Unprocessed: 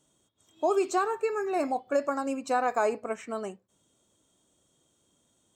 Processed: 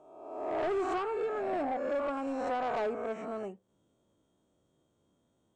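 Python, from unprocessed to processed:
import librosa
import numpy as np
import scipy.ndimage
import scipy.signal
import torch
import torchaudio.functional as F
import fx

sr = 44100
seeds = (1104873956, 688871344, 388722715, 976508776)

y = fx.spec_swells(x, sr, rise_s=1.07)
y = fx.lowpass(y, sr, hz=1000.0, slope=6)
y = 10.0 ** (-25.0 / 20.0) * np.tanh(y / 10.0 ** (-25.0 / 20.0))
y = y * 10.0 ** (-2.5 / 20.0)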